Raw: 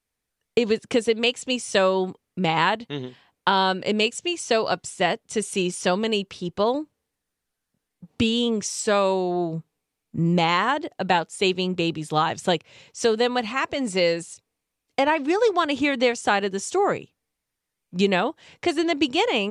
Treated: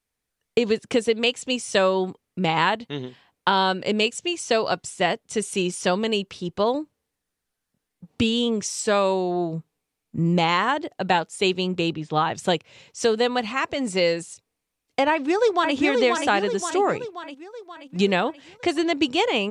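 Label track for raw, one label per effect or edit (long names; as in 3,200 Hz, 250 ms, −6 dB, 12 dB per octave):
11.930000	12.350000	Gaussian smoothing sigma 1.7 samples
15.100000	15.750000	delay throw 530 ms, feedback 55%, level −4 dB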